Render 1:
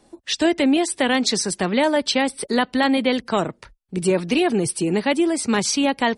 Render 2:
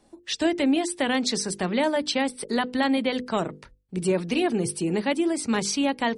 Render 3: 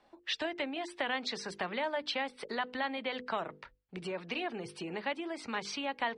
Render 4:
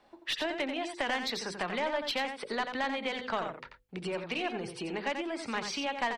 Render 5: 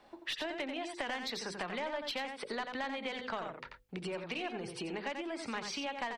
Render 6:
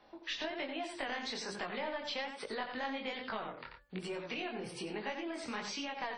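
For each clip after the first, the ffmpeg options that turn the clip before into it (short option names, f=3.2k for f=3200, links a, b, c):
-af "lowshelf=f=360:g=3,bandreject=f=50:t=h:w=6,bandreject=f=100:t=h:w=6,bandreject=f=150:t=h:w=6,bandreject=f=200:t=h:w=6,bandreject=f=250:t=h:w=6,bandreject=f=300:t=h:w=6,bandreject=f=350:t=h:w=6,bandreject=f=400:t=h:w=6,bandreject=f=450:t=h:w=6,bandreject=f=500:t=h:w=6,volume=-5.5dB"
-filter_complex "[0:a]highshelf=f=5.6k:g=-5,acompressor=threshold=-27dB:ratio=6,acrossover=split=590 4300:gain=0.2 1 0.0794[a][b][c];[a][b][c]amix=inputs=3:normalize=0,volume=1dB"
-af "aeval=exprs='0.0891*(cos(1*acos(clip(val(0)/0.0891,-1,1)))-cos(1*PI/2))+0.0398*(cos(2*acos(clip(val(0)/0.0891,-1,1)))-cos(2*PI/2))+0.00794*(cos(4*acos(clip(val(0)/0.0891,-1,1)))-cos(4*PI/2))+0.00794*(cos(5*acos(clip(val(0)/0.0891,-1,1)))-cos(5*PI/2))':c=same,aecho=1:1:88:0.422"
-af "acompressor=threshold=-44dB:ratio=2,volume=2.5dB"
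-af "flanger=delay=18.5:depth=7.4:speed=1.2,bandreject=f=289.6:t=h:w=4,bandreject=f=579.2:t=h:w=4,bandreject=f=868.8:t=h:w=4,bandreject=f=1.1584k:t=h:w=4,bandreject=f=1.448k:t=h:w=4,bandreject=f=1.7376k:t=h:w=4,volume=2dB" -ar 44100 -c:a wmav2 -b:a 32k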